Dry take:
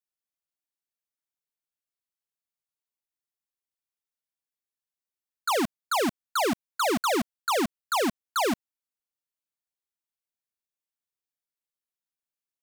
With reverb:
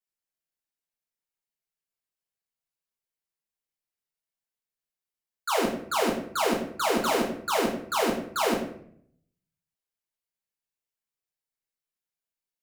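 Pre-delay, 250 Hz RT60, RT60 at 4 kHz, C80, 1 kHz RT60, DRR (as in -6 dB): 5 ms, 0.85 s, 0.45 s, 9.0 dB, 0.60 s, -4.0 dB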